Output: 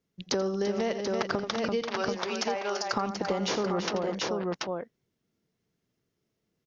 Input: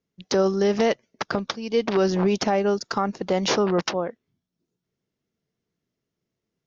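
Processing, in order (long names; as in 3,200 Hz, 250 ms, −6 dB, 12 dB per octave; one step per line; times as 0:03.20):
speech leveller 0.5 s
0:01.82–0:02.93: high-pass filter 710 Hz 12 dB per octave
multi-tap delay 84/338/734 ms −11.5/−8/−7 dB
downward compressor 6 to 1, threshold −26 dBFS, peak gain reduction 11.5 dB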